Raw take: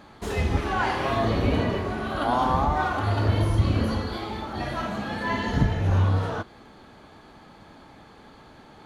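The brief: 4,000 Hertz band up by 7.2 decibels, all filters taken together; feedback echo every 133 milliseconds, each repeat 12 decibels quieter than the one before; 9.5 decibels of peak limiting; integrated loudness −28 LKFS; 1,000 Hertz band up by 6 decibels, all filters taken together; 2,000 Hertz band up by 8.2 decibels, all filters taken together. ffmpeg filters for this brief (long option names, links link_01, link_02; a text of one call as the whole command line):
ffmpeg -i in.wav -af "equalizer=frequency=1000:width_type=o:gain=5.5,equalizer=frequency=2000:width_type=o:gain=7.5,equalizer=frequency=4000:width_type=o:gain=6,alimiter=limit=-15.5dB:level=0:latency=1,aecho=1:1:133|266|399:0.251|0.0628|0.0157,volume=-3.5dB" out.wav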